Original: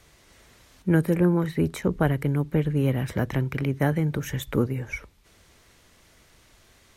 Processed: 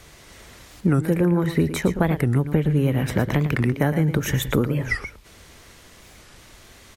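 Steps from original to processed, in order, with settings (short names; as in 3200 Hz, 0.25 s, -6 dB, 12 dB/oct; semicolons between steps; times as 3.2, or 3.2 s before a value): compressor 4:1, threshold -26 dBFS, peak gain reduction 9.5 dB; echo 0.114 s -11 dB; record warp 45 rpm, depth 250 cents; gain +9 dB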